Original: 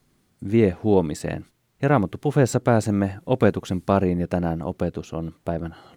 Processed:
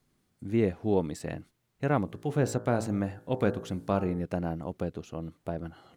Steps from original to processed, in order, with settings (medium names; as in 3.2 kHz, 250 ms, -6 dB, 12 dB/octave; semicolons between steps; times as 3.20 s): 2.04–4.23 s: de-hum 55.74 Hz, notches 32; trim -8 dB